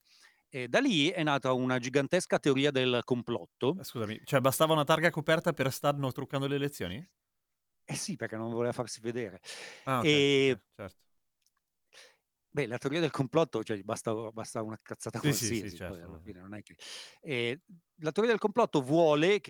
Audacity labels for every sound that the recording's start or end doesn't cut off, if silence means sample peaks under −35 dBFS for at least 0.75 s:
7.900000	10.870000	sound